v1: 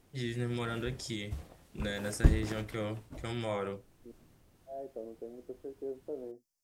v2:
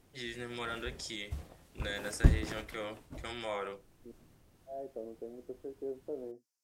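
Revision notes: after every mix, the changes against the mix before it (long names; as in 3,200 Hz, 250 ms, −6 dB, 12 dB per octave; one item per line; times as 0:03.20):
first voice: add meter weighting curve A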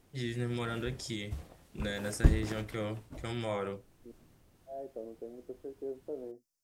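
first voice: remove meter weighting curve A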